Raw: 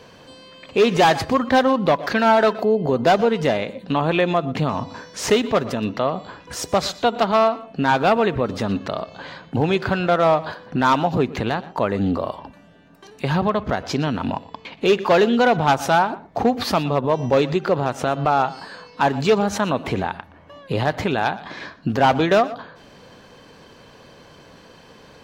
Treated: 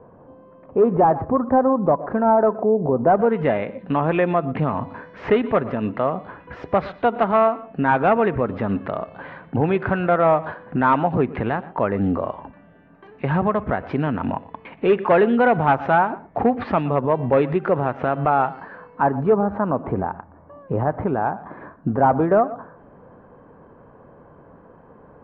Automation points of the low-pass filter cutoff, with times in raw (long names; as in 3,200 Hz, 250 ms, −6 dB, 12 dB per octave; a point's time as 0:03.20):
low-pass filter 24 dB per octave
0:03.01 1,100 Hz
0:03.43 2,200 Hz
0:18.47 2,200 Hz
0:19.27 1,300 Hz